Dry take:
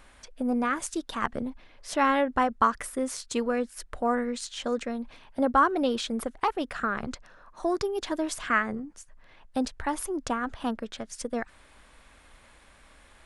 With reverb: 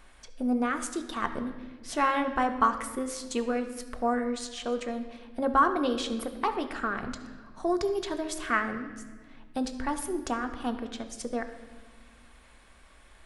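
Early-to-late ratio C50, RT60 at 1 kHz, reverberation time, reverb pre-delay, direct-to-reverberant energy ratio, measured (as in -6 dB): 10.0 dB, 1.3 s, 1.5 s, 3 ms, 6.0 dB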